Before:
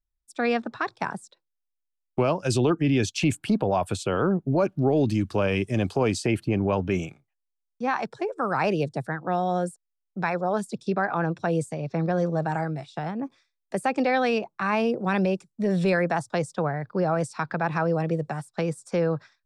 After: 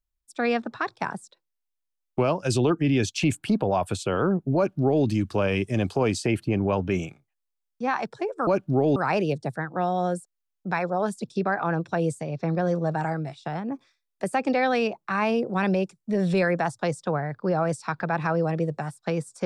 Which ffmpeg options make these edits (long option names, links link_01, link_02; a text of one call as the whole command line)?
ffmpeg -i in.wav -filter_complex "[0:a]asplit=3[link_01][link_02][link_03];[link_01]atrim=end=8.472[link_04];[link_02]atrim=start=4.558:end=5.052[link_05];[link_03]atrim=start=8.468[link_06];[link_04][link_05]acrossfade=duration=0.004:curve1=hsin:curve2=hsin[link_07];[link_07][link_06]acrossfade=duration=0.004:curve1=hsin:curve2=hsin" out.wav